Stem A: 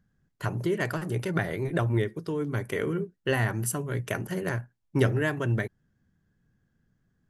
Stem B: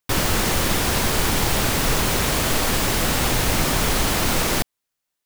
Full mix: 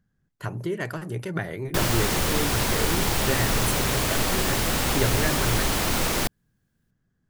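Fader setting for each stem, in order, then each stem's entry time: -1.5, -3.5 dB; 0.00, 1.65 s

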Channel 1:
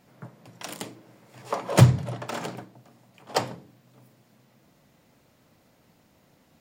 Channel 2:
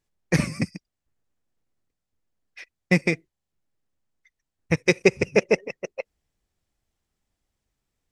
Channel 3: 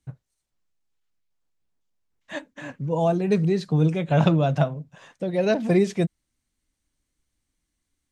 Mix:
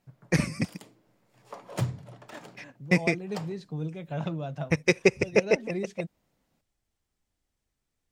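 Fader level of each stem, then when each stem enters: -14.0, -3.0, -13.5 dB; 0.00, 0.00, 0.00 s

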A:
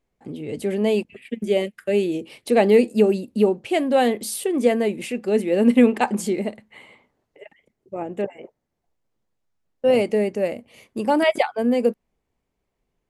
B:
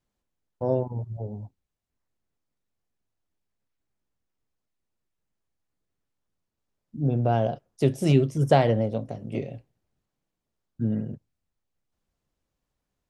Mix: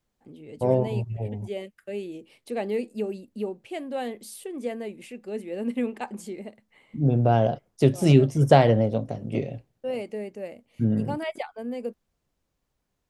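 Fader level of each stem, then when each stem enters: -13.0, +3.0 dB; 0.00, 0.00 s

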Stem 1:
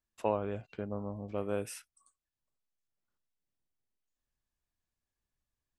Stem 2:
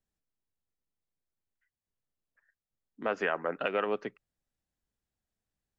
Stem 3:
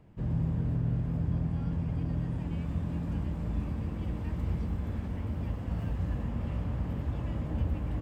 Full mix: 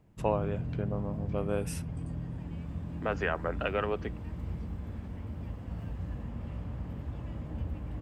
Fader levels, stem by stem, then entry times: +2.0, -1.0, -5.5 dB; 0.00, 0.00, 0.00 s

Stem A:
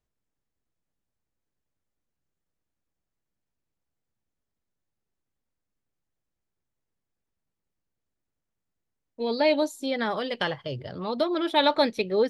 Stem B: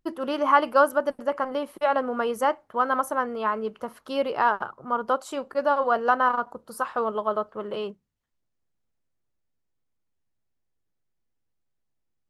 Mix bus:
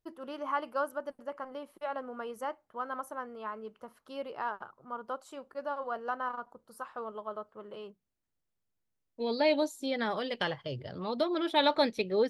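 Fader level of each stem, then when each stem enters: -4.5, -13.5 dB; 0.00, 0.00 s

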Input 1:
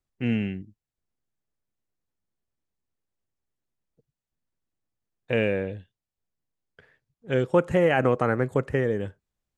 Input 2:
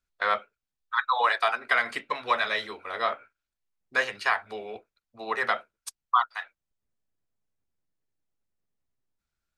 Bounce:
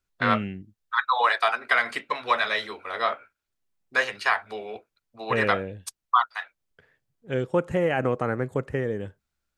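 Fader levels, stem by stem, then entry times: -3.0, +2.0 dB; 0.00, 0.00 s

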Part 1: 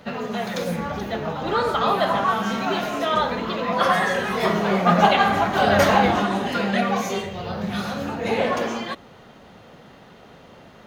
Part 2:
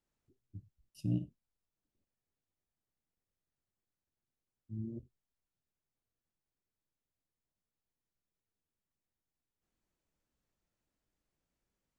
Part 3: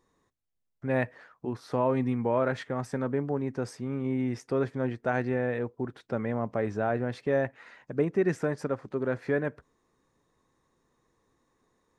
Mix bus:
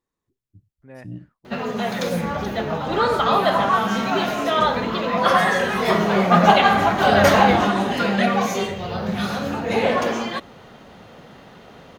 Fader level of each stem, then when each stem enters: +2.5, -2.0, -14.5 dB; 1.45, 0.00, 0.00 s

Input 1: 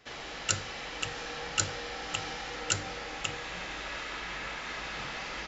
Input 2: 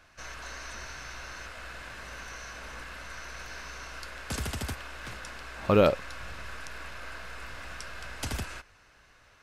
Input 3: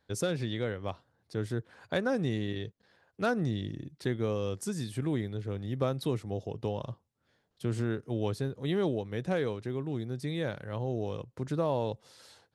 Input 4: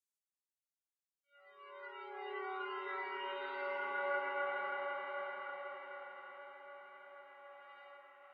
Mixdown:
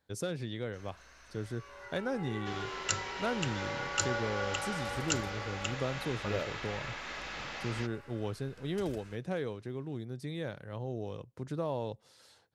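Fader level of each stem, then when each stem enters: -3.5, -16.0, -5.0, +0.5 dB; 2.40, 0.55, 0.00, 0.00 s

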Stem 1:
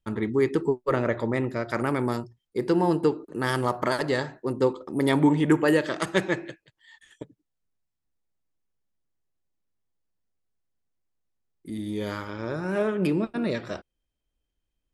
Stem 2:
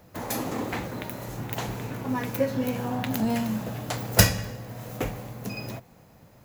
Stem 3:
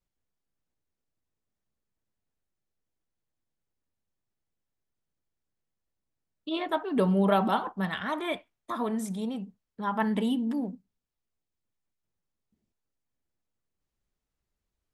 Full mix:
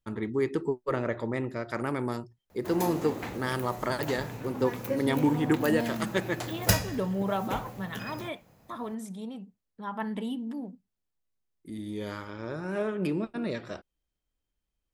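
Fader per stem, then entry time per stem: -5.0, -6.0, -6.0 dB; 0.00, 2.50, 0.00 s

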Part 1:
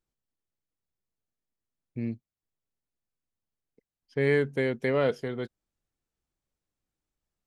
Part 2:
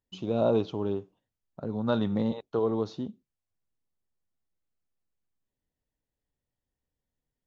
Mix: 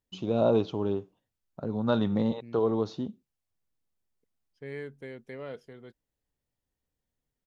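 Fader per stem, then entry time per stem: -15.0, +1.0 dB; 0.45, 0.00 s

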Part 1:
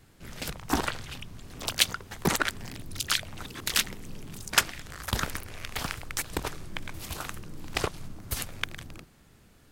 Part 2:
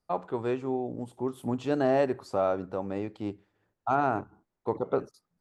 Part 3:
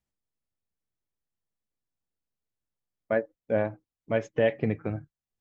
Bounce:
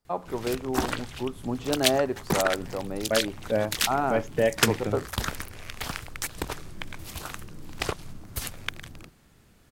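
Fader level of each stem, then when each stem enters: -0.5, 0.0, +0.5 dB; 0.05, 0.00, 0.00 s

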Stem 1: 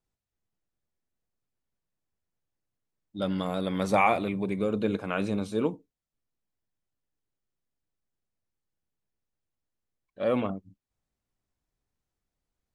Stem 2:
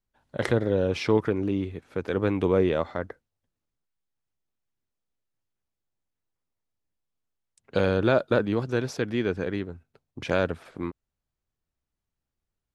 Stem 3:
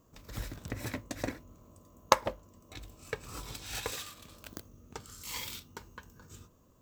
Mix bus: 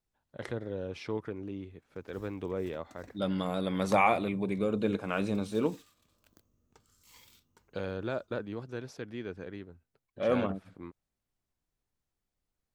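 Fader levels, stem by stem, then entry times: -2.0, -13.0, -18.5 dB; 0.00, 0.00, 1.80 s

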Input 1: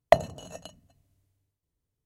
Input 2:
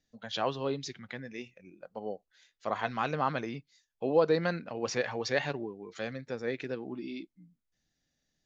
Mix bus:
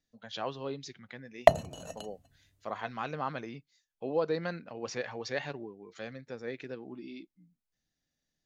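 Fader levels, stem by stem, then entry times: -1.0, -5.0 dB; 1.35, 0.00 s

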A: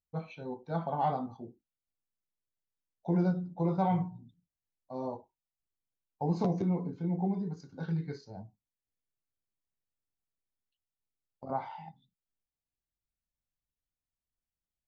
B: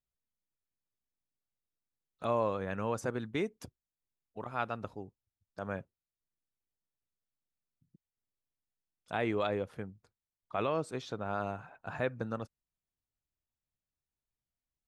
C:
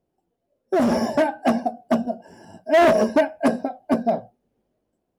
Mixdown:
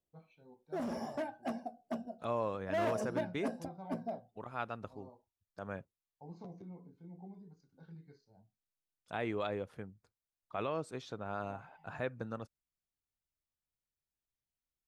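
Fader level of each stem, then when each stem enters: -19.5, -4.5, -19.0 dB; 0.00, 0.00, 0.00 s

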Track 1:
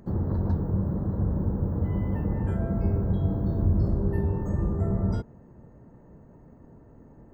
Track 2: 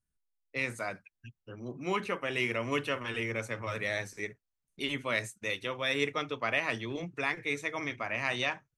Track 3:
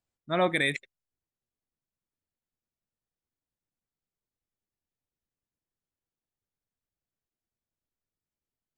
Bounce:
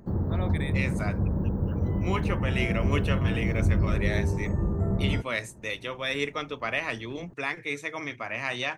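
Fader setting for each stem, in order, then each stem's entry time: -0.5, +1.0, -12.0 dB; 0.00, 0.20, 0.00 s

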